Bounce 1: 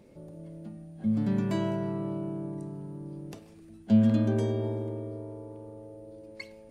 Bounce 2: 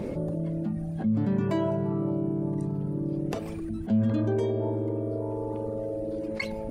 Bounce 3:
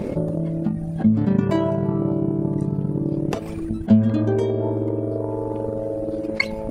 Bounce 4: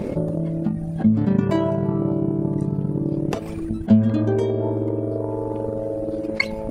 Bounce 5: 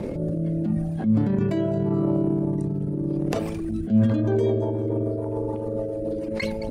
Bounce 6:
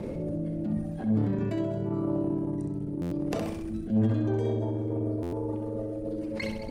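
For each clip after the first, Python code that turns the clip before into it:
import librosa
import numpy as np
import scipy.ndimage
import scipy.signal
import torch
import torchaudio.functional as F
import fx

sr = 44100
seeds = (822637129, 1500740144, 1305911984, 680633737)

y1 = fx.dereverb_blind(x, sr, rt60_s=1.7)
y1 = fx.high_shelf(y1, sr, hz=2400.0, db=-11.5)
y1 = fx.env_flatten(y1, sr, amount_pct=70)
y1 = F.gain(torch.from_numpy(y1), -3.5).numpy()
y2 = fx.transient(y1, sr, attack_db=8, sustain_db=-5)
y2 = F.gain(torch.from_numpy(y2), 5.5).numpy()
y3 = y2
y4 = fx.echo_wet_highpass(y3, sr, ms=216, feedback_pct=44, hz=3800.0, wet_db=-14)
y4 = fx.transient(y4, sr, attack_db=-10, sustain_db=7)
y4 = fx.rotary_switch(y4, sr, hz=0.8, then_hz=7.0, switch_at_s=3.67)
y5 = fx.echo_feedback(y4, sr, ms=65, feedback_pct=48, wet_db=-6)
y5 = fx.buffer_glitch(y5, sr, at_s=(3.01, 5.22), block=512, repeats=8)
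y5 = fx.transformer_sat(y5, sr, knee_hz=200.0)
y5 = F.gain(torch.from_numpy(y5), -5.5).numpy()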